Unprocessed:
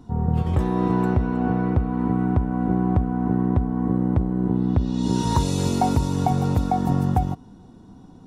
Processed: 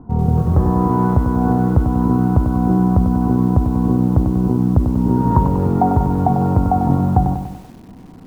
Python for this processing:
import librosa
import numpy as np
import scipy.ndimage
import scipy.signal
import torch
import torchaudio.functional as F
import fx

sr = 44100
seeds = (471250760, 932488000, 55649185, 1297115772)

y = scipy.signal.sosfilt(scipy.signal.butter(4, 1300.0, 'lowpass', fs=sr, output='sos'), x)
y = fx.rider(y, sr, range_db=10, speed_s=0.5)
y = fx.echo_crushed(y, sr, ms=96, feedback_pct=55, bits=8, wet_db=-7.0)
y = y * librosa.db_to_amplitude(5.5)